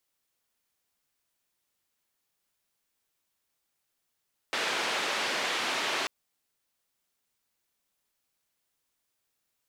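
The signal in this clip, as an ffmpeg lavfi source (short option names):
-f lavfi -i "anoisesrc=c=white:d=1.54:r=44100:seed=1,highpass=f=330,lowpass=f=3200,volume=-17.2dB"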